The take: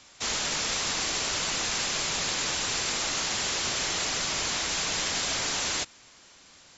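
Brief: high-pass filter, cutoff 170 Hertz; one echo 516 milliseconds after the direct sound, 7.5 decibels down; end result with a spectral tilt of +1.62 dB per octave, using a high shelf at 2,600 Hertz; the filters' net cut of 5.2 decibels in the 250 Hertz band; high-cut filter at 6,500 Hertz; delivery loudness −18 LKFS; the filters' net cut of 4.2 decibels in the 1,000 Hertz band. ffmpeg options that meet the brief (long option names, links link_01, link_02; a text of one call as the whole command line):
ffmpeg -i in.wav -af "highpass=170,lowpass=6500,equalizer=frequency=250:width_type=o:gain=-5.5,equalizer=frequency=1000:width_type=o:gain=-6.5,highshelf=frequency=2600:gain=6.5,aecho=1:1:516:0.422,volume=6dB" out.wav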